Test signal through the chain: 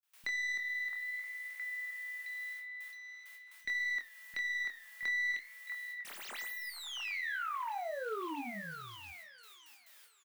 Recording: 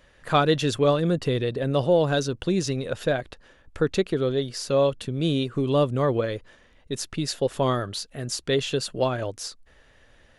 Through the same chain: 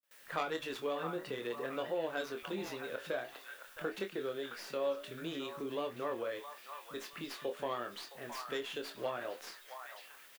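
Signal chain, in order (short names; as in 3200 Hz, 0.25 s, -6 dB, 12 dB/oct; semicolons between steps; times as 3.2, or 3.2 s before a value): tracing distortion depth 0.15 ms; flange 0.51 Hz, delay 9 ms, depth 9.3 ms, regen +78%; added noise blue -50 dBFS; tilt shelf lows -4.5 dB, about 1200 Hz; bands offset in time lows, highs 30 ms, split 190 Hz; compressor 2:1, threshold -35 dBFS; three-band isolator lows -22 dB, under 200 Hz, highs -14 dB, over 2900 Hz; doubler 25 ms -7 dB; gate with hold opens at -46 dBFS; on a send: delay with a stepping band-pass 0.666 s, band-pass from 1100 Hz, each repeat 0.7 oct, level -4.5 dB; on the sum: gain -2 dB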